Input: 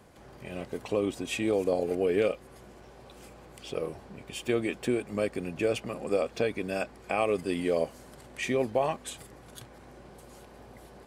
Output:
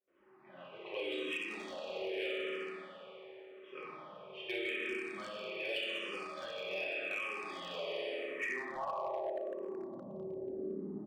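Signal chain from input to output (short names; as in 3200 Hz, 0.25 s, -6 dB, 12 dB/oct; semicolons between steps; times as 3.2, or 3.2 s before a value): low-pass opened by the level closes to 730 Hz, open at -22 dBFS; high shelf 2500 Hz -9 dB; gate with hold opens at -47 dBFS; bell 91 Hz -8.5 dB 1.1 oct; reverb RT60 2.7 s, pre-delay 3 ms, DRR -8 dB; band-pass sweep 3100 Hz -> 260 Hz, 8.1–10.15; early reflections 50 ms -10.5 dB, 63 ms -10.5 dB; compressor 16:1, threshold -41 dBFS, peak gain reduction 17.5 dB; hard clip -38.5 dBFS, distortion -23 dB; endless phaser -0.85 Hz; gain +8.5 dB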